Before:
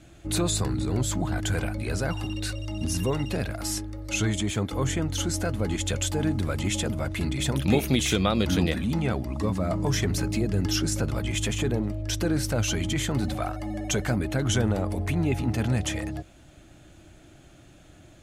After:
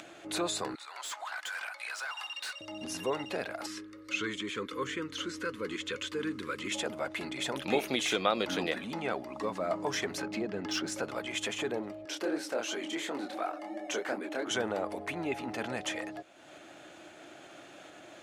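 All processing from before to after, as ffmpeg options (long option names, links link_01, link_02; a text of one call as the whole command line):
ffmpeg -i in.wav -filter_complex "[0:a]asettb=1/sr,asplit=3[link_01][link_02][link_03];[link_01]atrim=end=0.754[link_04];[link_02]atrim=start=0.75:end=2.61,asetpts=PTS-STARTPTS,afade=type=in:duration=0.004:curve=qsin,afade=type=out:start_time=1.856:duration=0.004:curve=qsin,highpass=frequency=980:width=0.5412,highpass=frequency=980:width=1.3066,volume=35dB,asoftclip=hard,volume=-35dB[link_05];[link_03]atrim=start=2.606[link_06];[link_04][link_05]acrossfade=duration=0.004:curve1=hsin:curve2=qsin[link_07];[link_07][link_06]acrossfade=duration=0.004:curve1=qsin:curve2=hsin,asettb=1/sr,asplit=3[link_08][link_09][link_10];[link_08]atrim=end=3.664[link_11];[link_09]atrim=start=3.66:end=6.72,asetpts=PTS-STARTPTS,afade=type=in:duration=0.004:curve=qsin,afade=type=out:start_time=3.056:duration=0.004:curve=qsin,acrossover=split=4800[link_12][link_13];[link_13]acompressor=threshold=-43dB:ratio=4:attack=1:release=60[link_14];[link_12][link_14]amix=inputs=2:normalize=0,asuperstop=centerf=720:order=8:qfactor=1.5[link_15];[link_10]atrim=start=6.716[link_16];[link_11][link_15]acrossfade=duration=0.004:curve1=hsin:curve2=qsin[link_17];[link_17][link_16]acrossfade=duration=0.004:curve1=qsin:curve2=hsin,asettb=1/sr,asplit=3[link_18][link_19][link_20];[link_18]atrim=end=10.224[link_21];[link_19]atrim=start=10.22:end=10.9,asetpts=PTS-STARTPTS,afade=type=in:duration=0.004:curve=qsin,afade=type=out:start_time=0.676:duration=0.004:curve=qsin,equalizer=frequency=210:width_type=o:width=0.3:gain=5.5,adynamicsmooth=sensitivity=6.5:basefreq=3000[link_22];[link_20]atrim=start=10.896[link_23];[link_21][link_22]acrossfade=duration=0.004:curve1=hsin:curve2=qsin[link_24];[link_24][link_23]acrossfade=duration=0.004:curve1=qsin:curve2=hsin,asettb=1/sr,asplit=3[link_25][link_26][link_27];[link_25]atrim=end=12.054[link_28];[link_26]atrim=start=12.05:end=14.51,asetpts=PTS-STARTPTS,afade=type=in:duration=0.004:curve=qsin,afade=type=out:start_time=2.456:duration=0.004:curve=qsin,flanger=delay=20:depth=7.4:speed=2.8,highpass=frequency=290:width_type=q:width=1.5[link_29];[link_27]atrim=start=14.506[link_30];[link_28][link_29]acrossfade=duration=0.004:curve1=hsin:curve2=qsin[link_31];[link_31][link_30]acrossfade=duration=0.004:curve1=qsin:curve2=hsin,lowpass=frequency=2900:poles=1,acompressor=mode=upward:threshold=-33dB:ratio=2.5,highpass=470" out.wav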